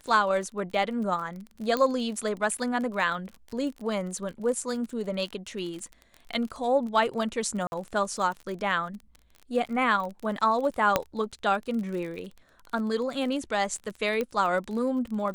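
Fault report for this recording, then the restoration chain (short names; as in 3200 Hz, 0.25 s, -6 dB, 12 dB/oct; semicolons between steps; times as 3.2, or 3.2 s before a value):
crackle 31/s -34 dBFS
1.77 pop -14 dBFS
7.67–7.72 gap 51 ms
10.96 pop -7 dBFS
14.21 pop -16 dBFS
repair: de-click; interpolate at 7.67, 51 ms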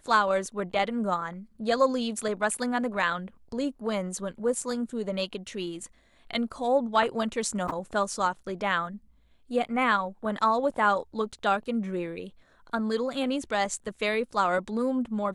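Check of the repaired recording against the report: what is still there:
none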